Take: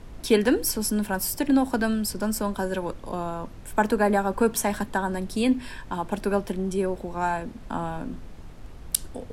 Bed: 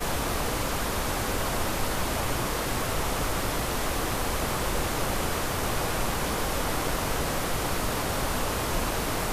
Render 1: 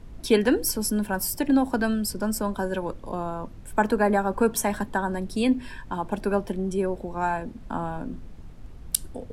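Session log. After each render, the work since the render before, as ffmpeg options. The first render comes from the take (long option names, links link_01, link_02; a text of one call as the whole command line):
ffmpeg -i in.wav -af "afftdn=noise_reduction=6:noise_floor=-42" out.wav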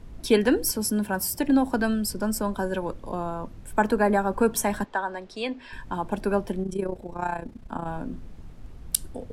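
ffmpeg -i in.wav -filter_complex "[0:a]asettb=1/sr,asplit=3[link_01][link_02][link_03];[link_01]atrim=end=0.714[link_04];[link_02]atrim=start=0.71:end=1.39,asetpts=PTS-STARTPTS,afade=type=in:duration=0.004:curve=qsin,afade=type=out:start_time=0.676:duration=0.004:curve=qsin,highpass=58[link_05];[link_03]atrim=start=1.386[link_06];[link_04][link_05]acrossfade=duration=0.004:curve1=hsin:curve2=qsin[link_07];[link_07][link_06]acrossfade=duration=0.004:curve1=qsin:curve2=hsin,asettb=1/sr,asplit=3[link_08][link_09][link_10];[link_08]atrim=end=4.844[link_11];[link_09]atrim=start=4.84:end=5.73,asetpts=PTS-STARTPTS,afade=type=in:duration=0.004:curve=qsin,afade=type=out:start_time=0.886:duration=0.004:curve=qsin,acrossover=split=410 6300:gain=0.141 1 0.0631[link_12][link_13][link_14];[link_12][link_13][link_14]amix=inputs=3:normalize=0[link_15];[link_10]atrim=start=5.726[link_16];[link_11][link_15]acrossfade=duration=0.004:curve1=hsin:curve2=qsin[link_17];[link_17][link_16]acrossfade=duration=0.004:curve1=qsin:curve2=hsin,asettb=1/sr,asplit=3[link_18][link_19][link_20];[link_18]atrim=end=6.634[link_21];[link_19]atrim=start=6.63:end=7.87,asetpts=PTS-STARTPTS,afade=type=in:duration=0.004:curve=qsin,afade=type=out:start_time=1.236:duration=0.004:curve=qsin,tremolo=f=30:d=0.75[link_22];[link_20]atrim=start=7.866[link_23];[link_21][link_22]acrossfade=duration=0.004:curve1=hsin:curve2=qsin[link_24];[link_24][link_23]acrossfade=duration=0.004:curve1=qsin:curve2=hsin" out.wav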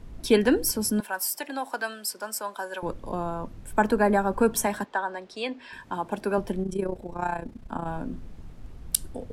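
ffmpeg -i in.wav -filter_complex "[0:a]asettb=1/sr,asplit=3[link_01][link_02][link_03];[link_01]atrim=end=1.004[link_04];[link_02]atrim=start=1:end=2.83,asetpts=PTS-STARTPTS,afade=type=in:duration=0.004:curve=qsin,afade=type=out:start_time=1.826:duration=0.004:curve=qsin,highpass=740[link_05];[link_03]atrim=start=2.826[link_06];[link_04][link_05]acrossfade=duration=0.004:curve1=hsin:curve2=qsin[link_07];[link_07][link_06]acrossfade=duration=0.004:curve1=qsin:curve2=hsin,asettb=1/sr,asplit=3[link_08][link_09][link_10];[link_08]atrim=end=4.664[link_11];[link_09]atrim=start=4.66:end=6.38,asetpts=PTS-STARTPTS,afade=type=in:duration=0.004:curve=qsin,afade=type=out:start_time=1.716:duration=0.004:curve=qsin,highpass=frequency=250:poles=1[link_12];[link_10]atrim=start=6.376[link_13];[link_11][link_12]acrossfade=duration=0.004:curve1=hsin:curve2=qsin[link_14];[link_14][link_13]acrossfade=duration=0.004:curve1=qsin:curve2=hsin" out.wav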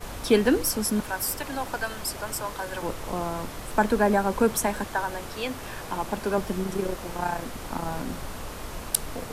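ffmpeg -i in.wav -i bed.wav -filter_complex "[1:a]volume=-10dB[link_01];[0:a][link_01]amix=inputs=2:normalize=0" out.wav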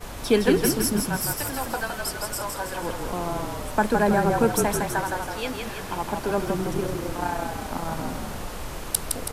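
ffmpeg -i in.wav -filter_complex "[0:a]asplit=8[link_01][link_02][link_03][link_04][link_05][link_06][link_07][link_08];[link_02]adelay=163,afreqshift=-35,volume=-4dB[link_09];[link_03]adelay=326,afreqshift=-70,volume=-9.5dB[link_10];[link_04]adelay=489,afreqshift=-105,volume=-15dB[link_11];[link_05]adelay=652,afreqshift=-140,volume=-20.5dB[link_12];[link_06]adelay=815,afreqshift=-175,volume=-26.1dB[link_13];[link_07]adelay=978,afreqshift=-210,volume=-31.6dB[link_14];[link_08]adelay=1141,afreqshift=-245,volume=-37.1dB[link_15];[link_01][link_09][link_10][link_11][link_12][link_13][link_14][link_15]amix=inputs=8:normalize=0" out.wav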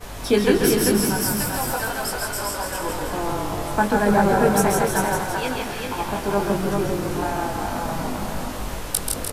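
ffmpeg -i in.wav -filter_complex "[0:a]asplit=2[link_01][link_02];[link_02]adelay=20,volume=-4dB[link_03];[link_01][link_03]amix=inputs=2:normalize=0,aecho=1:1:135|392:0.501|0.631" out.wav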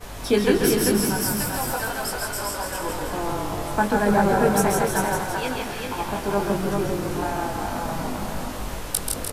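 ffmpeg -i in.wav -af "volume=-1.5dB" out.wav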